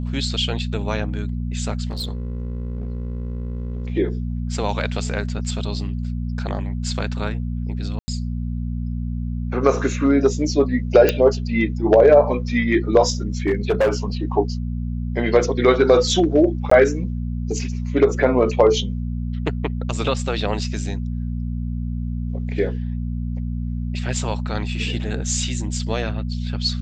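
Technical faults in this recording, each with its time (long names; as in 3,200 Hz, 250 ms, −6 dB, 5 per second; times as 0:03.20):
mains hum 60 Hz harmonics 4 −25 dBFS
0:01.90–0:03.90: clipping −23 dBFS
0:07.99–0:08.08: drop-out 90 ms
0:11.09: click −3 dBFS
0:13.47–0:13.94: clipping −13 dBFS
0:16.70–0:16.71: drop-out 14 ms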